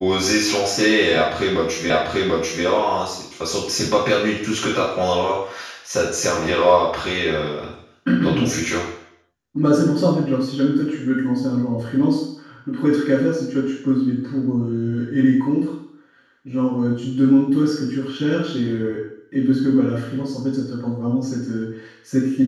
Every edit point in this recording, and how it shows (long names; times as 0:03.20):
0:01.90: the same again, the last 0.74 s